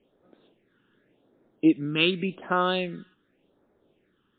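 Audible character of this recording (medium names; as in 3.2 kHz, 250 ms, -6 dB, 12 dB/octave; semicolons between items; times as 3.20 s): a quantiser's noise floor 12-bit, dither none; phasing stages 8, 0.88 Hz, lowest notch 630–2900 Hz; MP3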